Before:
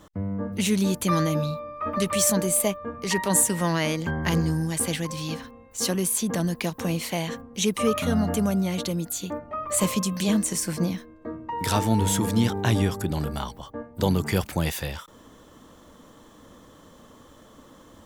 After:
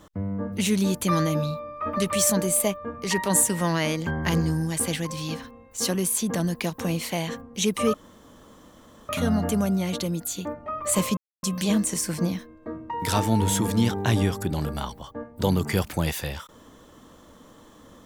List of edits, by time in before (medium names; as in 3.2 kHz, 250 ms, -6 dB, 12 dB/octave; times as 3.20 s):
7.94 s: insert room tone 1.15 s
10.02 s: insert silence 0.26 s